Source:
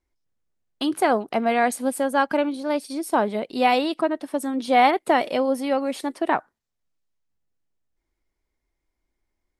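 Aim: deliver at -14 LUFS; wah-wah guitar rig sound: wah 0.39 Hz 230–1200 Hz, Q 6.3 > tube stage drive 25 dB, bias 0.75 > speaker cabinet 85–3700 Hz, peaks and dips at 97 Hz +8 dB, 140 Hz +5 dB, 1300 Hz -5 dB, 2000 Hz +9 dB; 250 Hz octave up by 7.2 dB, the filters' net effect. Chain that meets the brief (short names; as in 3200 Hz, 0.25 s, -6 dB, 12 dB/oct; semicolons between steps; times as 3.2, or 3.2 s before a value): bell 250 Hz +8 dB; wah 0.39 Hz 230–1200 Hz, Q 6.3; tube stage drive 25 dB, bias 0.75; speaker cabinet 85–3700 Hz, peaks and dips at 97 Hz +8 dB, 140 Hz +5 dB, 1300 Hz -5 dB, 2000 Hz +9 dB; gain +19.5 dB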